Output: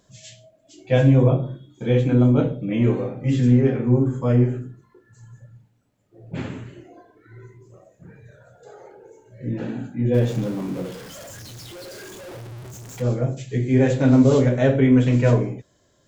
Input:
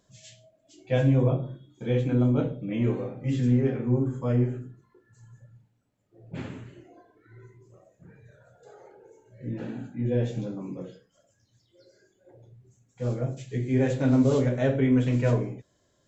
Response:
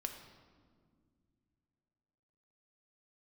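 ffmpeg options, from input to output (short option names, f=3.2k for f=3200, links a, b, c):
-filter_complex "[0:a]asettb=1/sr,asplit=3[a][b][c];[a]atrim=end=10.144[d];[b]atrim=start=10.14:end=13.02,asetpts=PTS-STARTPTS,afade=t=in:d=0.004:c=qsin,afade=t=out:st=2.876:d=0.004:c=qsin,aeval=exprs='val(0)+0.5*0.01*sgn(val(0))':c=same[e];[c]atrim=start=13.016[f];[d][e]acrossfade=d=0.004:c1=hsin:c2=qsin[g];[g][f]acrossfade=d=0.004:c1=qsin:c2=hsin,volume=6.5dB"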